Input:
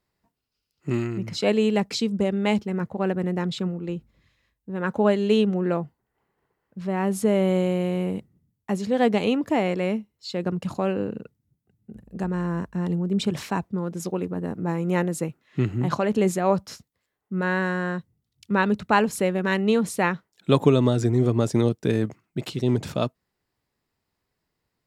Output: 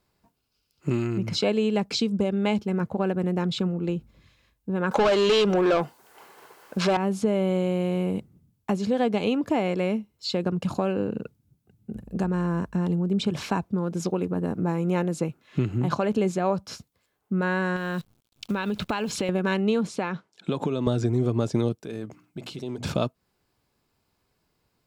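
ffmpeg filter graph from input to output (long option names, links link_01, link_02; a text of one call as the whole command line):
ffmpeg -i in.wav -filter_complex "[0:a]asettb=1/sr,asplit=3[link_01][link_02][link_03];[link_01]atrim=end=4.914[link_04];[link_02]atrim=start=4.91:end=6.97,asetpts=PTS-STARTPTS,afade=type=in:duration=0.004:curve=qsin,afade=type=out:start_time=2.056:duration=0.004:curve=qsin,bass=frequency=250:gain=-6,treble=frequency=4000:gain=7,asplit=2[link_05][link_06];[link_06]highpass=frequency=720:poles=1,volume=27dB,asoftclip=type=tanh:threshold=-8dB[link_07];[link_05][link_07]amix=inputs=2:normalize=0,lowpass=frequency=7600:poles=1,volume=-6dB[link_08];[link_03]atrim=start=6.966[link_09];[link_04][link_08]acrossfade=duration=0.004:curve1=hsin:curve2=qsin[link_10];[link_10][link_09]acrossfade=duration=0.004:curve1=qsin:curve2=hsin,asettb=1/sr,asplit=3[link_11][link_12][link_13];[link_11]atrim=end=17.764[link_14];[link_12]atrim=start=17.76:end=19.29,asetpts=PTS-STARTPTS,afade=type=in:duration=0.004:curve=qsin,afade=type=out:start_time=1.526:duration=0.004:curve=qsin,equalizer=frequency=3400:width_type=o:width=1.3:gain=8.5,acrusher=bits=9:dc=4:mix=0:aa=0.000001,acompressor=threshold=-27dB:ratio=5:attack=3.2:release=140:knee=1:detection=peak[link_15];[link_13]atrim=start=19.286[link_16];[link_14][link_15]acrossfade=duration=0.004:curve1=hsin:curve2=qsin[link_17];[link_17][link_16]acrossfade=duration=0.004:curve1=qsin:curve2=hsin,asettb=1/sr,asplit=3[link_18][link_19][link_20];[link_18]atrim=end=19.874[link_21];[link_19]atrim=start=19.87:end=20.87,asetpts=PTS-STARTPTS,afade=type=in:duration=0.004:curve=qsin,afade=type=out:start_time=0.996:duration=0.004:curve=qsin,acompressor=threshold=-24dB:ratio=5:attack=3.2:release=140:knee=1:detection=peak,highpass=140,lowpass=6900[link_22];[link_20]atrim=start=20.866[link_23];[link_21][link_22]acrossfade=duration=0.004:curve1=hsin:curve2=qsin[link_24];[link_24][link_23]acrossfade=duration=0.004:curve1=qsin:curve2=hsin,asettb=1/sr,asplit=3[link_25][link_26][link_27];[link_25]atrim=end=21.804[link_28];[link_26]atrim=start=21.8:end=22.84,asetpts=PTS-STARTPTS,afade=type=in:duration=0.004:curve=qsin,afade=type=out:start_time=1.036:duration=0.004:curve=qsin,lowshelf=frequency=140:gain=-7,bandreject=frequency=60:width_type=h:width=6,bandreject=frequency=120:width_type=h:width=6,bandreject=frequency=180:width_type=h:width=6,bandreject=frequency=240:width_type=h:width=6,bandreject=frequency=300:width_type=h:width=6,acompressor=threshold=-48dB:ratio=2:attack=3.2:release=140:knee=1:detection=peak[link_29];[link_27]atrim=start=22.836[link_30];[link_28][link_29]acrossfade=duration=0.004:curve1=hsin:curve2=qsin[link_31];[link_31][link_30]acrossfade=duration=0.004:curve1=qsin:curve2=hsin,acrossover=split=6800[link_32][link_33];[link_33]acompressor=threshold=-54dB:ratio=4:attack=1:release=60[link_34];[link_32][link_34]amix=inputs=2:normalize=0,bandreject=frequency=1900:width=7.3,acompressor=threshold=-31dB:ratio=2.5,volume=6.5dB" out.wav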